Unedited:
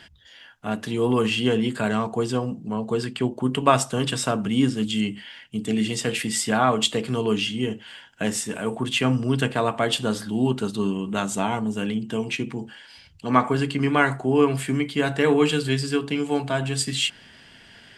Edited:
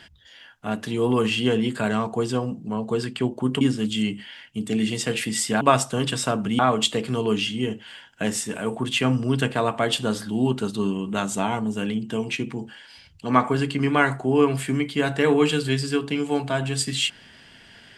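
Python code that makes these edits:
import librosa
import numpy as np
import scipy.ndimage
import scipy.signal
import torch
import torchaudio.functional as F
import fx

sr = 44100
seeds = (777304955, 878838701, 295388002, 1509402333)

y = fx.edit(x, sr, fx.move(start_s=3.61, length_s=0.98, to_s=6.59), tone=tone)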